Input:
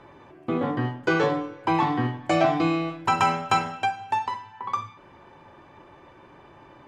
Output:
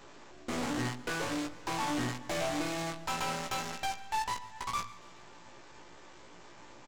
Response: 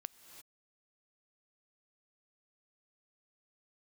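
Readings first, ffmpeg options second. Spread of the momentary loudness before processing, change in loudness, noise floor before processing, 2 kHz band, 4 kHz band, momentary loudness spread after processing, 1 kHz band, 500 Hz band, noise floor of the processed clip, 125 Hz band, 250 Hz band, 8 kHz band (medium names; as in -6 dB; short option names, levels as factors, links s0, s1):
10 LU, -10.0 dB, -51 dBFS, -8.0 dB, -3.0 dB, 20 LU, -11.0 dB, -12.0 dB, -53 dBFS, -11.0 dB, -10.5 dB, +3.5 dB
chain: -filter_complex "[0:a]highpass=130,highshelf=f=5600:g=9,acompressor=threshold=0.0708:ratio=6,aresample=16000,acrusher=bits=6:dc=4:mix=0:aa=0.000001,aresample=44100,aeval=exprs='(tanh(39.8*val(0)+0.4)-tanh(0.4))/39.8':c=same,asplit=2[s0][s1];[s1]adelay=17,volume=0.631[s2];[s0][s2]amix=inputs=2:normalize=0,asplit=2[s3][s4];[s4]aecho=0:1:141|282|423|564:0.075|0.0412|0.0227|0.0125[s5];[s3][s5]amix=inputs=2:normalize=0"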